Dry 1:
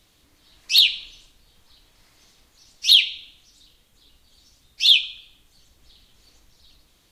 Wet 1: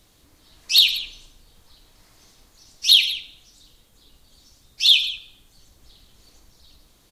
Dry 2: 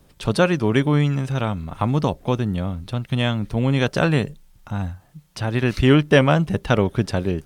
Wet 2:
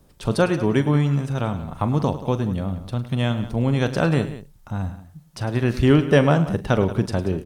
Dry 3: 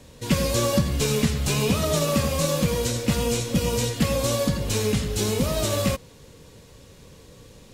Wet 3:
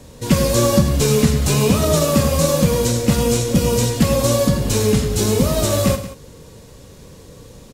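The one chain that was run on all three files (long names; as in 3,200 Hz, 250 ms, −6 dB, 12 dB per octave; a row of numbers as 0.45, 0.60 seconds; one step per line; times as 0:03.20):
parametric band 2,700 Hz −5 dB 1.6 octaves
multi-tap delay 42/105/181 ms −14/−14.5/−15.5 dB
normalise the peak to −2 dBFS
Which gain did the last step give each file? +4.0, −1.0, +7.0 decibels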